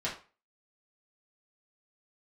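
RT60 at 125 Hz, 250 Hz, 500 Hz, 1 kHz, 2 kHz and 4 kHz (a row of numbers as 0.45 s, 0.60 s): 0.35 s, 0.30 s, 0.35 s, 0.35 s, 0.35 s, 0.30 s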